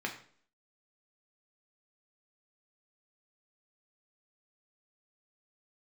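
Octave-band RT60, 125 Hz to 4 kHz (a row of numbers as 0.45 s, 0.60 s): 0.50 s, 0.60 s, 0.55 s, 0.50 s, 0.45 s, 0.45 s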